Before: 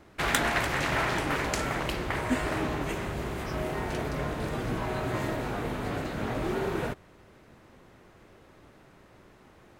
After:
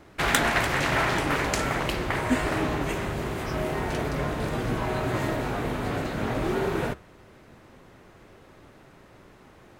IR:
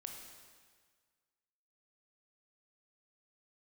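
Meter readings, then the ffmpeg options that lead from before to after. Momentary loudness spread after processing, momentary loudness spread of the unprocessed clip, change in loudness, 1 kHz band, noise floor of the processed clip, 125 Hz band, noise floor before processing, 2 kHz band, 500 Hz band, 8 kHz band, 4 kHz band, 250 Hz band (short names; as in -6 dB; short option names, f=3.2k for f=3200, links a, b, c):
6 LU, 6 LU, +3.5 dB, +3.5 dB, -53 dBFS, +3.5 dB, -56 dBFS, +3.5 dB, +3.5 dB, +3.5 dB, +3.5 dB, +3.5 dB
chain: -af "flanger=delay=6.9:depth=1.2:regen=-85:speed=0.75:shape=triangular,volume=8dB"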